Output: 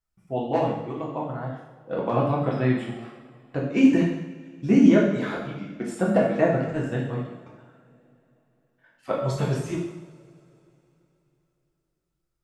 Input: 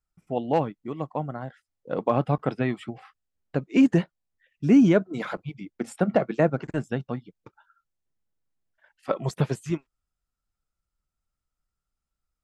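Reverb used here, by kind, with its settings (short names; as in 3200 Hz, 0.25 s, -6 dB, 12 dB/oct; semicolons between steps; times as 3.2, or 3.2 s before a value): two-slope reverb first 0.85 s, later 3.5 s, from -22 dB, DRR -4 dB; gain -3.5 dB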